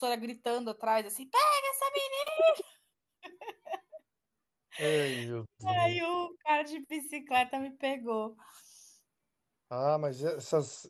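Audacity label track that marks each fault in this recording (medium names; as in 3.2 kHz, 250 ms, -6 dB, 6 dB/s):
2.280000	2.280000	dropout 4.1 ms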